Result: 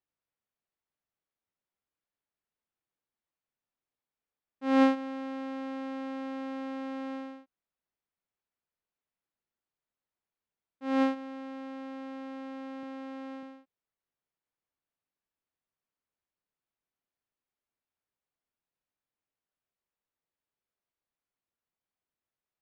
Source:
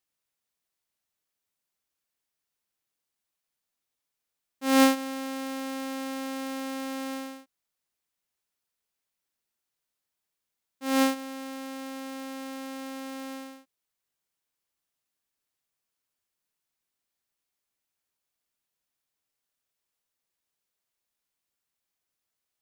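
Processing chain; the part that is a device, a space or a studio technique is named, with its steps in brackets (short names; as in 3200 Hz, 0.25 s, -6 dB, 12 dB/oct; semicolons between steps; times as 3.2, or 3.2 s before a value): phone in a pocket (LPF 3700 Hz 12 dB/oct; high shelf 2200 Hz -10 dB); 12.83–13.43 HPF 130 Hz; gain -2 dB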